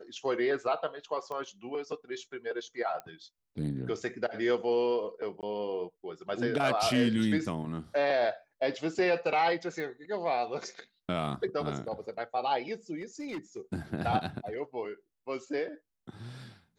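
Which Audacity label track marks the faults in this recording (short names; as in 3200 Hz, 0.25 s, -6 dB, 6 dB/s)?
1.320000	1.320000	pop -27 dBFS
3.000000	3.000000	pop -26 dBFS
5.410000	5.430000	gap 18 ms
9.800000	9.800000	pop -27 dBFS
12.980000	13.600000	clipped -33.5 dBFS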